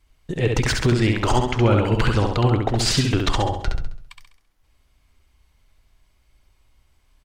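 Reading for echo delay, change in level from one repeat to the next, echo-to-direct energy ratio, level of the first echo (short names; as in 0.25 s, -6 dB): 67 ms, -7.0 dB, -3.0 dB, -4.0 dB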